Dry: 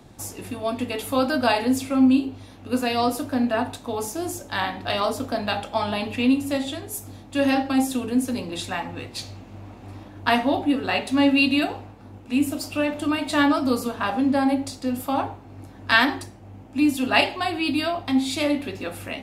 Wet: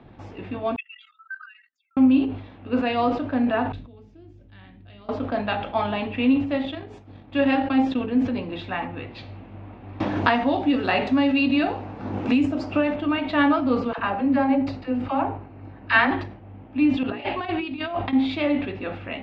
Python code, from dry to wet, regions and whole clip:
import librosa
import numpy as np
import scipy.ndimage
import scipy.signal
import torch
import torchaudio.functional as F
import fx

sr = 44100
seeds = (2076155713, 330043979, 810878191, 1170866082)

y = fx.chain(x, sr, fx.spec_expand(power=3.0),
    fx.brickwall_bandpass(low_hz=1200.0, high_hz=7700.0),
    fx.level_steps(step_db=16), at=(0.76, 1.97))
y = fx.chain(y, sr, fx.tone_stack(knobs='10-0-1'),
    fx.env_flatten(amount_pct=50), at=(3.72, 5.09))
y = fx.chain(y, sr, fx.high_shelf(hz=4600.0, db=4.5),
    fx.transient(attack_db=1, sustain_db=-10), at=(6.59, 8.07))
y = fx.chain(y, sr, fx.high_shelf_res(hz=4700.0, db=12.0, q=1.5),
    fx.band_squash(depth_pct=100), at=(10.0, 12.96))
y = fx.chain(y, sr, fx.notch(hz=3400.0, q=6.9),
    fx.dispersion(late='lows', ms=51.0, hz=620.0), at=(13.93, 16.11))
y = fx.chain(y, sr, fx.lowpass(hz=10000.0, slope=12),
    fx.over_compress(threshold_db=-28.0, ratio=-0.5),
    fx.hum_notches(base_hz=60, count=8), at=(17.03, 18.13))
y = scipy.signal.sosfilt(scipy.signal.cheby2(4, 70, 11000.0, 'lowpass', fs=sr, output='sos'), y)
y = fx.sustainer(y, sr, db_per_s=88.0)